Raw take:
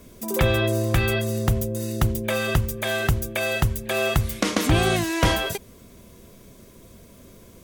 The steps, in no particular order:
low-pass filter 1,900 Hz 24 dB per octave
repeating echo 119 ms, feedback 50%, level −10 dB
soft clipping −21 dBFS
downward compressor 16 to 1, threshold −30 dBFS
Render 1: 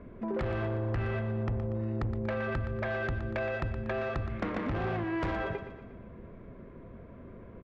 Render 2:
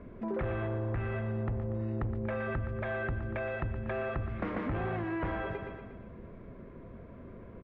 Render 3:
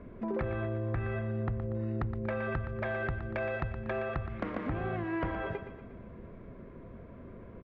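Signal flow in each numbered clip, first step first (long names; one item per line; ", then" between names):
low-pass filter, then soft clipping, then downward compressor, then repeating echo
soft clipping, then repeating echo, then downward compressor, then low-pass filter
low-pass filter, then downward compressor, then soft clipping, then repeating echo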